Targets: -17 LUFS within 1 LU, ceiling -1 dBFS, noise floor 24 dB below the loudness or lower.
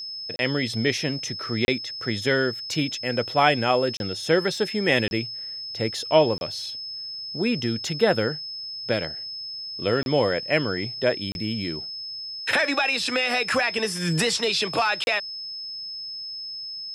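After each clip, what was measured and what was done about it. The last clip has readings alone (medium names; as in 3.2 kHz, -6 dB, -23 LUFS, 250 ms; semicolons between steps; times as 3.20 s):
dropouts 8; longest dropout 31 ms; steady tone 5.2 kHz; tone level -32 dBFS; loudness -24.5 LUFS; peak level -3.5 dBFS; loudness target -17.0 LUFS
-> interpolate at 0.36/1.65/3.97/5.08/6.38/10.03/11.32/15.04 s, 31 ms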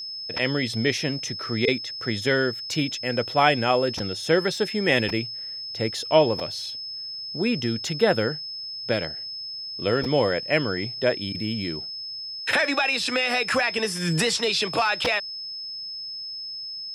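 dropouts 0; steady tone 5.2 kHz; tone level -32 dBFS
-> band-stop 5.2 kHz, Q 30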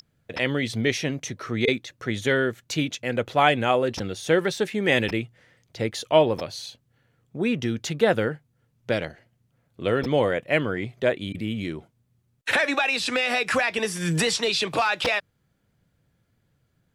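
steady tone not found; loudness -24.5 LUFS; peak level -4.0 dBFS; loudness target -17.0 LUFS
-> trim +7.5 dB; peak limiter -1 dBFS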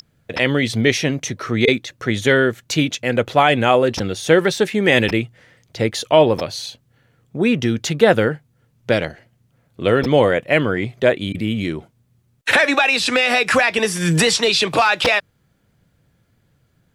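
loudness -17.5 LUFS; peak level -1.0 dBFS; noise floor -62 dBFS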